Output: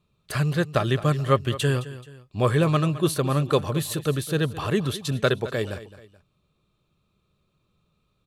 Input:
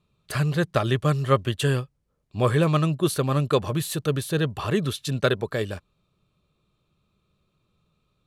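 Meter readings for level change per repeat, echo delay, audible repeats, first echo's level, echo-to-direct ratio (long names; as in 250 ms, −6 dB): −8.0 dB, 215 ms, 2, −15.5 dB, −15.0 dB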